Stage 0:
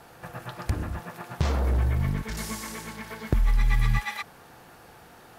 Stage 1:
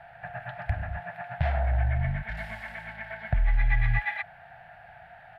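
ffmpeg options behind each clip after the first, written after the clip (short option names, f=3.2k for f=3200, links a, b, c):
-af "firequalizer=gain_entry='entry(140,0);entry(250,-17);entry(390,-29);entry(680,11);entry(1100,-12);entry(1600,8);entry(6100,-29);entry(8700,-25)':delay=0.05:min_phase=1,volume=-1.5dB"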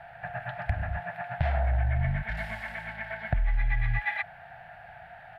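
-af "acompressor=threshold=-24dB:ratio=6,volume=2dB"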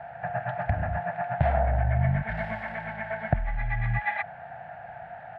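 -af "bandpass=f=360:t=q:w=0.5:csg=0,volume=9dB"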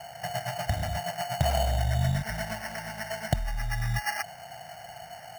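-af "acrusher=samples=12:mix=1:aa=0.000001,volume=-2dB"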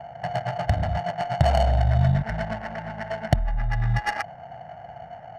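-af "adynamicsmooth=sensitivity=2:basefreq=850,volume=6.5dB"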